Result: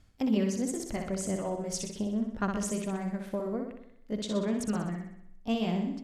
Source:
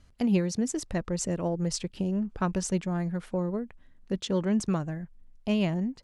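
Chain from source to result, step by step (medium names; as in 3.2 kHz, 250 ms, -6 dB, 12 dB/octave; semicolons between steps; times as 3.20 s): rotating-head pitch shifter +1.5 st; flutter echo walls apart 10.7 m, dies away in 0.72 s; trim -2.5 dB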